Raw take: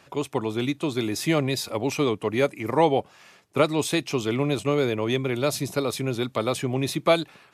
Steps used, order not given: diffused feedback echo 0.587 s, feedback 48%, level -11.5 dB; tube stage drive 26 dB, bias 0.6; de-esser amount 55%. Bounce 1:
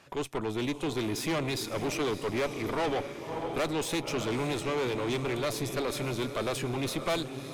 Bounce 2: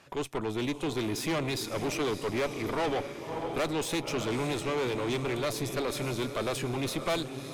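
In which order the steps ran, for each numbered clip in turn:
de-esser > diffused feedback echo > tube stage; diffused feedback echo > de-esser > tube stage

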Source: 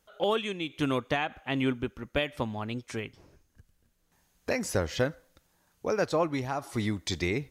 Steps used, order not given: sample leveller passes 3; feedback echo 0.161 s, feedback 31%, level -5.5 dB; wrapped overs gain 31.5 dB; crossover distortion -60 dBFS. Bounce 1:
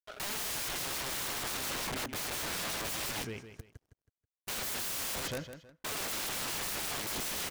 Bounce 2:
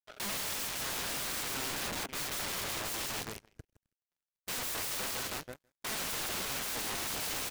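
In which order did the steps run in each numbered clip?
sample leveller > crossover distortion > feedback echo > wrapped overs; feedback echo > crossover distortion > sample leveller > wrapped overs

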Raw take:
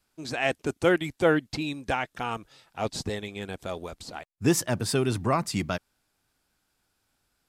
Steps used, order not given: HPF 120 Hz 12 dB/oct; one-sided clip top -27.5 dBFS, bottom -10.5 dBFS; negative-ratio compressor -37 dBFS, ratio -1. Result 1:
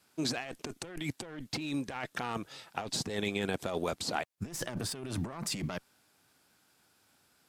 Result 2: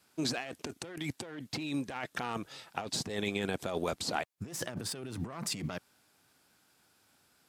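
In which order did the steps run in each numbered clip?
HPF > one-sided clip > negative-ratio compressor; one-sided clip > negative-ratio compressor > HPF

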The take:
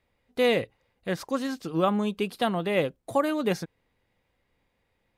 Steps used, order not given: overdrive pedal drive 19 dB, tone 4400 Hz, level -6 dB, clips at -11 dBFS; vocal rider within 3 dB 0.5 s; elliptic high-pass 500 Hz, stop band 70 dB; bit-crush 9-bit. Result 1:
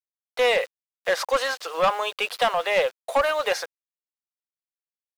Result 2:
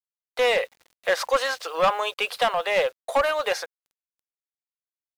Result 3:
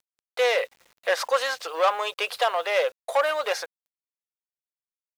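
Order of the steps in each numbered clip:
elliptic high-pass > vocal rider > bit-crush > overdrive pedal; elliptic high-pass > overdrive pedal > bit-crush > vocal rider; overdrive pedal > elliptic high-pass > vocal rider > bit-crush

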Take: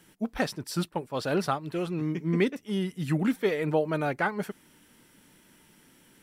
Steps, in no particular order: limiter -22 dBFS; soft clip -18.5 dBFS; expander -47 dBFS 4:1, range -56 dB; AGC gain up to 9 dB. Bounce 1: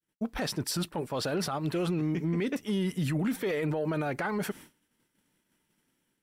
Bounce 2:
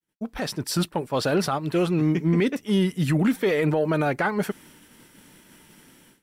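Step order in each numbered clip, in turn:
expander > AGC > limiter > soft clip; limiter > soft clip > AGC > expander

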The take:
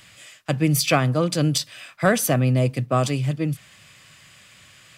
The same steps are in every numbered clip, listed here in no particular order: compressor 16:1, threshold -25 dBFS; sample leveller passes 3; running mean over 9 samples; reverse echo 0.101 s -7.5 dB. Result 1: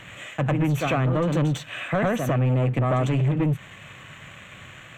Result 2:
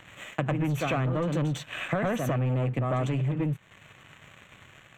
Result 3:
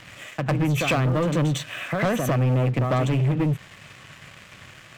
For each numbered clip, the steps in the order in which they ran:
reverse echo > compressor > sample leveller > running mean; reverse echo > sample leveller > running mean > compressor; running mean > compressor > reverse echo > sample leveller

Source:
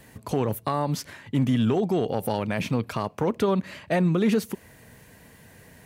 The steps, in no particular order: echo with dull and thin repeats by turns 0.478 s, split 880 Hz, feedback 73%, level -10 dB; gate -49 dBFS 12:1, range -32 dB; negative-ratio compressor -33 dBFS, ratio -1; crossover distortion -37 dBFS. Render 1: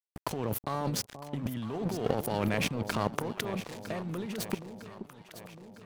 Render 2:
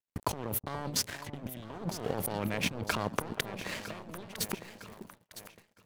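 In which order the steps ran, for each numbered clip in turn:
gate > crossover distortion > negative-ratio compressor > echo with dull and thin repeats by turns; negative-ratio compressor > crossover distortion > echo with dull and thin repeats by turns > gate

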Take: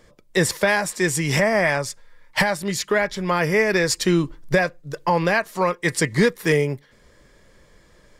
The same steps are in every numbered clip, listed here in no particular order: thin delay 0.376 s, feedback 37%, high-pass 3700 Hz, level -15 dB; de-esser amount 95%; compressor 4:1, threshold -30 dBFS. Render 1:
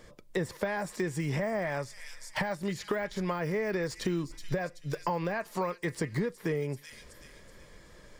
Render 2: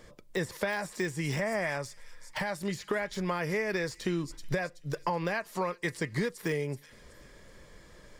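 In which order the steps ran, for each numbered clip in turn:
thin delay > de-esser > compressor; compressor > thin delay > de-esser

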